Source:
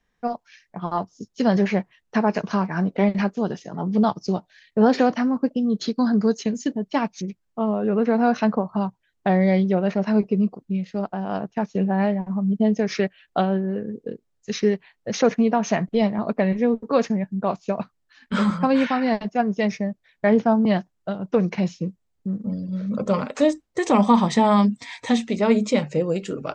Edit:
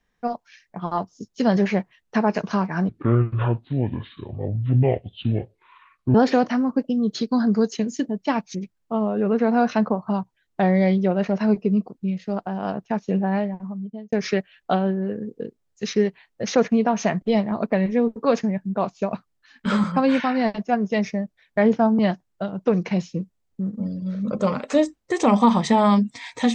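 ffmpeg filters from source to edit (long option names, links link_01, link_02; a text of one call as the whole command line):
ffmpeg -i in.wav -filter_complex "[0:a]asplit=4[link_01][link_02][link_03][link_04];[link_01]atrim=end=2.894[link_05];[link_02]atrim=start=2.89:end=4.81,asetpts=PTS-STARTPTS,asetrate=26019,aresample=44100[link_06];[link_03]atrim=start=4.806:end=12.79,asetpts=PTS-STARTPTS,afade=type=out:start_time=7.034:duration=0.95[link_07];[link_04]atrim=start=12.79,asetpts=PTS-STARTPTS,afade=type=in:duration=0.004:curve=hsin[link_08];[link_05][link_06]acrossfade=duration=0.004:curve1=hsin:curve2=hsin[link_09];[link_07][link_08]concat=n=2:v=0:a=1[link_10];[link_09][link_10]acrossfade=duration=0.004:curve1=hsin:curve2=hsin" out.wav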